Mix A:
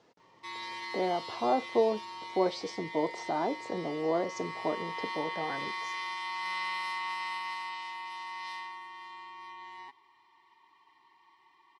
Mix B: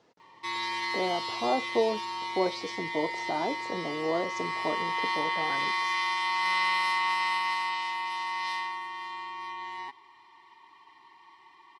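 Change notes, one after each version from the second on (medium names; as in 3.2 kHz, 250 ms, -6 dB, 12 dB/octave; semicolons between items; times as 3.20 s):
background +8.0 dB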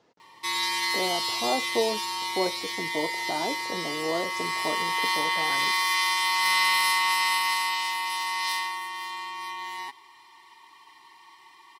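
background: remove tape spacing loss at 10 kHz 21 dB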